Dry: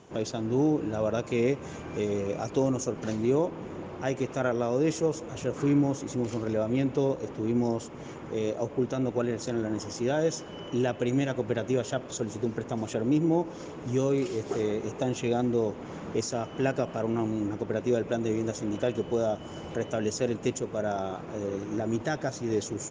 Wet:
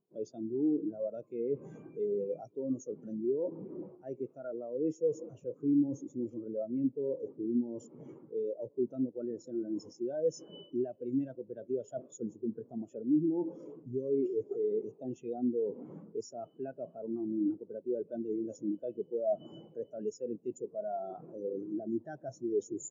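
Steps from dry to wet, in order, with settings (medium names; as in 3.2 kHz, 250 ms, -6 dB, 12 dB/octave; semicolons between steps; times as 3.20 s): treble shelf 3.8 kHz +5 dB; reverse; compression 10:1, threshold -33 dBFS, peak gain reduction 14 dB; reverse; bass shelf 490 Hz -2.5 dB; in parallel at +2.5 dB: peak limiter -33 dBFS, peak gain reduction 9.5 dB; on the sum: high-pass 110 Hz 24 dB/octave; spectral contrast expander 2.5:1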